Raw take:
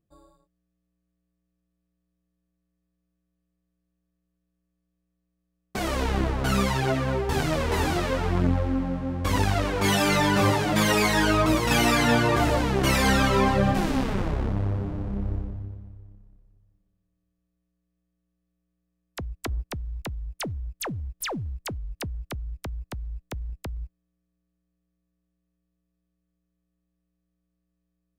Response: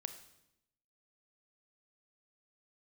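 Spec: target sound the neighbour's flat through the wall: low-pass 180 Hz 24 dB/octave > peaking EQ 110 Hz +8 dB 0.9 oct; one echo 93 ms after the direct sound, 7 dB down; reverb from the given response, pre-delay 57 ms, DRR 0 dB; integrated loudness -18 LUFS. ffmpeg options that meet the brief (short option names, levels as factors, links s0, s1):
-filter_complex "[0:a]aecho=1:1:93:0.447,asplit=2[s0][s1];[1:a]atrim=start_sample=2205,adelay=57[s2];[s1][s2]afir=irnorm=-1:irlink=0,volume=1.33[s3];[s0][s3]amix=inputs=2:normalize=0,lowpass=f=180:w=0.5412,lowpass=f=180:w=1.3066,equalizer=f=110:t=o:w=0.9:g=8,volume=1.88"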